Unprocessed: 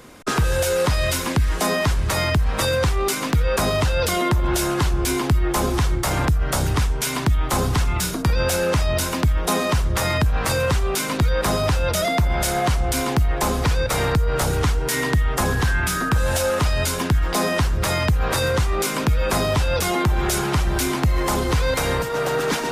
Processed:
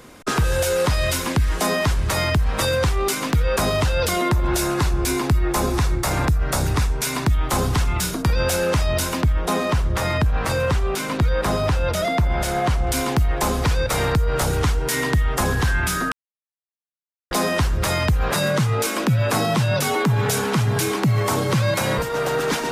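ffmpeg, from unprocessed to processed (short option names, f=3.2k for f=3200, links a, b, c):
-filter_complex "[0:a]asettb=1/sr,asplit=3[a][b][c];[a]atrim=end=4.104[d];[b]atrim=start=4.1:end=7.31,asetpts=PTS-STARTPTS,afade=t=in:d=0.004:c=qsin,afade=t=out:st=3.206:d=0.004:c=qsin,bandreject=f=3.1k:w=11[e];[c]atrim=start=7.306[f];[d][e]acrossfade=d=0.004:c1=hsin:c2=qsin[g];[g][f]acrossfade=d=0.004:c1=qsin:c2=hsin,asettb=1/sr,asplit=3[h][i][j];[h]atrim=end=9.224[k];[i]atrim=start=9.22:end=12.87,asetpts=PTS-STARTPTS,afade=t=in:d=0.004:c=qsin,afade=t=out:st=3.646:d=0.004:c=qsin,highshelf=f=3.9k:g=-7[l];[j]atrim=start=12.866[m];[k][l]acrossfade=d=0.004:c1=hsin:c2=qsin[n];[n][m]acrossfade=d=0.004:c1=qsin:c2=hsin,asettb=1/sr,asplit=3[o][p][q];[o]atrim=end=18.314[r];[p]atrim=start=18.31:end=21.98,asetpts=PTS-STARTPTS,afade=t=in:d=0.004:c=qsin,afade=t=out:st=3.666:d=0.004:c=qsin,afreqshift=62[s];[q]atrim=start=21.976[t];[r][s]acrossfade=d=0.004:c1=hsin:c2=qsin[u];[u][t]acrossfade=d=0.004:c1=qsin:c2=hsin,asplit=3[v][w][x];[v]atrim=end=16.12,asetpts=PTS-STARTPTS,afade=t=out:st=16.116:d=0.004:c=hsin[y];[w]atrim=start=16.12:end=17.31,asetpts=PTS-STARTPTS,volume=0[z];[x]atrim=start=17.31,asetpts=PTS-STARTPTS,afade=t=in:d=0.004:c=hsin[aa];[y][z][aa]concat=n=3:v=0:a=1"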